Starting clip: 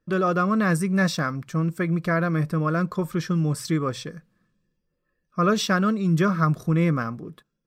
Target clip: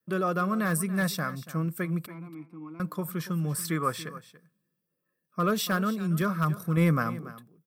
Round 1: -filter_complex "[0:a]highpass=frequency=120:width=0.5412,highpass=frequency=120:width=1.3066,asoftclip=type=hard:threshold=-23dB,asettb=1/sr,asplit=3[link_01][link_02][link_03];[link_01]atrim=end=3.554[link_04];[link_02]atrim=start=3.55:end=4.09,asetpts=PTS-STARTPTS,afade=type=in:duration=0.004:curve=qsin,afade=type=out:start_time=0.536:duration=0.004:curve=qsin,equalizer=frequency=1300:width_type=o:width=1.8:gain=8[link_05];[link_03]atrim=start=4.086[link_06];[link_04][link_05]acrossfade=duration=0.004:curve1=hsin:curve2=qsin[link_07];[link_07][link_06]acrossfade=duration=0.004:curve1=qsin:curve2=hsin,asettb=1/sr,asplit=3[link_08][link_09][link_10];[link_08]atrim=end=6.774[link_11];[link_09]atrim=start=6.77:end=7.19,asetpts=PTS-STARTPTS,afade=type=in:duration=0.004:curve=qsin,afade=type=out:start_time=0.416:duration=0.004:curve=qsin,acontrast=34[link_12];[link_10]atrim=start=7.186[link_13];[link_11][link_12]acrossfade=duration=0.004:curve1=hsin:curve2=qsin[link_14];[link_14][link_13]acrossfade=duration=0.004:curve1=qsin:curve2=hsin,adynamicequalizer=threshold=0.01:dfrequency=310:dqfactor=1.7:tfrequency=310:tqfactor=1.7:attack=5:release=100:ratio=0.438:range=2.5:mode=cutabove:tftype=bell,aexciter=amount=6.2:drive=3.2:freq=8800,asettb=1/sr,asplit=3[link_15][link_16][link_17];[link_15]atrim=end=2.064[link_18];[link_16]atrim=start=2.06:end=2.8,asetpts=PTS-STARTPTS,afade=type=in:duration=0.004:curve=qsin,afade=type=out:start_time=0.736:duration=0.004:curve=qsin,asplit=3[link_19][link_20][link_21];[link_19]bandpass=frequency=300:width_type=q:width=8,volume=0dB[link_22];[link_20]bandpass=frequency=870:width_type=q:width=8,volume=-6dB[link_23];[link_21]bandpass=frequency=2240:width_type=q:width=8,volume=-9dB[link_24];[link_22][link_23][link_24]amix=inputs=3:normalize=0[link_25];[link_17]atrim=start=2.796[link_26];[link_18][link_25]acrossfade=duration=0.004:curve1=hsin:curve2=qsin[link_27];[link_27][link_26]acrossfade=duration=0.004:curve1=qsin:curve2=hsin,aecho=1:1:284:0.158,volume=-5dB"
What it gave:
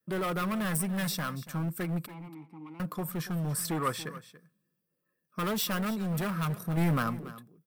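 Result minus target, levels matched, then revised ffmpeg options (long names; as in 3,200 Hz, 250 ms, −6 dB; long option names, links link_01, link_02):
hard clipping: distortion +20 dB
-filter_complex "[0:a]highpass=frequency=120:width=0.5412,highpass=frequency=120:width=1.3066,asoftclip=type=hard:threshold=-12dB,asettb=1/sr,asplit=3[link_01][link_02][link_03];[link_01]atrim=end=3.554[link_04];[link_02]atrim=start=3.55:end=4.09,asetpts=PTS-STARTPTS,afade=type=in:duration=0.004:curve=qsin,afade=type=out:start_time=0.536:duration=0.004:curve=qsin,equalizer=frequency=1300:width_type=o:width=1.8:gain=8[link_05];[link_03]atrim=start=4.086[link_06];[link_04][link_05]acrossfade=duration=0.004:curve1=hsin:curve2=qsin[link_07];[link_07][link_06]acrossfade=duration=0.004:curve1=qsin:curve2=hsin,asettb=1/sr,asplit=3[link_08][link_09][link_10];[link_08]atrim=end=6.774[link_11];[link_09]atrim=start=6.77:end=7.19,asetpts=PTS-STARTPTS,afade=type=in:duration=0.004:curve=qsin,afade=type=out:start_time=0.416:duration=0.004:curve=qsin,acontrast=34[link_12];[link_10]atrim=start=7.186[link_13];[link_11][link_12]acrossfade=duration=0.004:curve1=hsin:curve2=qsin[link_14];[link_14][link_13]acrossfade=duration=0.004:curve1=qsin:curve2=hsin,adynamicequalizer=threshold=0.01:dfrequency=310:dqfactor=1.7:tfrequency=310:tqfactor=1.7:attack=5:release=100:ratio=0.438:range=2.5:mode=cutabove:tftype=bell,aexciter=amount=6.2:drive=3.2:freq=8800,asettb=1/sr,asplit=3[link_15][link_16][link_17];[link_15]atrim=end=2.064[link_18];[link_16]atrim=start=2.06:end=2.8,asetpts=PTS-STARTPTS,afade=type=in:duration=0.004:curve=qsin,afade=type=out:start_time=0.736:duration=0.004:curve=qsin,asplit=3[link_19][link_20][link_21];[link_19]bandpass=frequency=300:width_type=q:width=8,volume=0dB[link_22];[link_20]bandpass=frequency=870:width_type=q:width=8,volume=-6dB[link_23];[link_21]bandpass=frequency=2240:width_type=q:width=8,volume=-9dB[link_24];[link_22][link_23][link_24]amix=inputs=3:normalize=0[link_25];[link_17]atrim=start=2.796[link_26];[link_18][link_25]acrossfade=duration=0.004:curve1=hsin:curve2=qsin[link_27];[link_27][link_26]acrossfade=duration=0.004:curve1=qsin:curve2=hsin,aecho=1:1:284:0.158,volume=-5dB"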